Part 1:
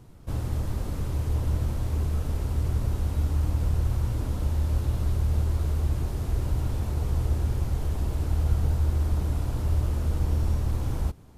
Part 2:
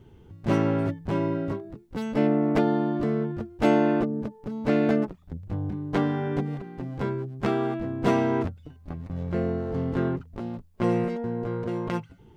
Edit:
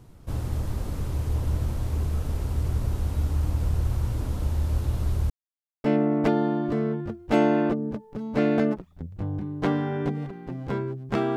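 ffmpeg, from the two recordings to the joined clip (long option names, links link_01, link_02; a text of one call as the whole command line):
ffmpeg -i cue0.wav -i cue1.wav -filter_complex "[0:a]apad=whole_dur=11.36,atrim=end=11.36,asplit=2[link_01][link_02];[link_01]atrim=end=5.3,asetpts=PTS-STARTPTS,afade=type=out:start_time=5.296:duration=0.004:curve=hsin[link_03];[link_02]atrim=start=5.3:end=5.84,asetpts=PTS-STARTPTS,volume=0[link_04];[1:a]atrim=start=2.15:end=7.67,asetpts=PTS-STARTPTS,afade=type=in:duration=0.004:curve=hsin[link_05];[link_03][link_04][link_05]concat=n=3:v=0:a=1" out.wav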